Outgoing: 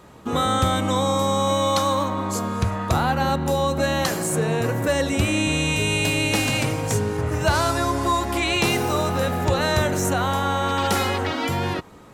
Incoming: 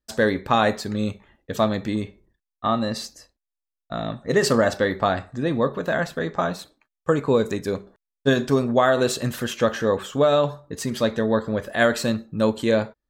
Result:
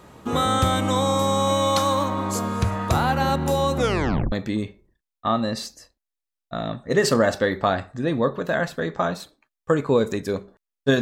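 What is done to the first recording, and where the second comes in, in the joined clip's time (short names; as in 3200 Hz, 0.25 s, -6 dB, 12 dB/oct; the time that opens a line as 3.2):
outgoing
3.76 tape stop 0.56 s
4.32 switch to incoming from 1.71 s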